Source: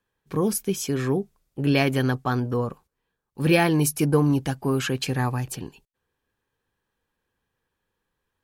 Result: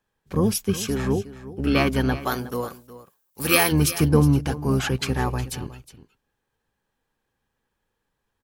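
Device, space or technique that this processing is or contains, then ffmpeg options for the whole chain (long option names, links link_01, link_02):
octave pedal: -filter_complex "[0:a]asplit=2[link_01][link_02];[link_02]asetrate=22050,aresample=44100,atempo=2,volume=-4dB[link_03];[link_01][link_03]amix=inputs=2:normalize=0,asplit=3[link_04][link_05][link_06];[link_04]afade=type=out:start_time=2.2:duration=0.02[link_07];[link_05]aemphasis=mode=production:type=riaa,afade=type=in:start_time=2.2:duration=0.02,afade=type=out:start_time=3.71:duration=0.02[link_08];[link_06]afade=type=in:start_time=3.71:duration=0.02[link_09];[link_07][link_08][link_09]amix=inputs=3:normalize=0,aecho=1:1:364:0.168"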